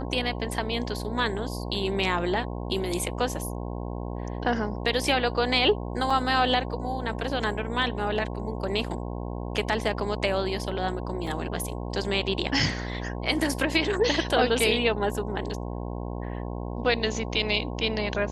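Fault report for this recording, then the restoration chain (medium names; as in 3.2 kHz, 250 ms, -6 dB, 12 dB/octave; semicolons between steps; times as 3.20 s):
buzz 60 Hz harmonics 18 -33 dBFS
6.10 s: dropout 4.4 ms
11.27 s: dropout 2.9 ms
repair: de-hum 60 Hz, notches 18; interpolate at 6.10 s, 4.4 ms; interpolate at 11.27 s, 2.9 ms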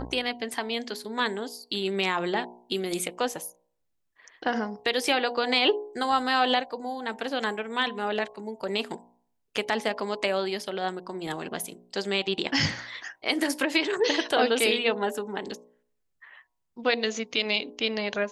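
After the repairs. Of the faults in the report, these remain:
nothing left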